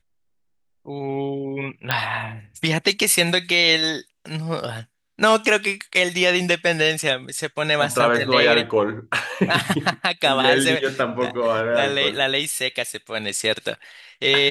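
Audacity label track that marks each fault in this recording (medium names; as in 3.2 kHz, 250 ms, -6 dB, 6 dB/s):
1.910000	1.910000	pop -6 dBFS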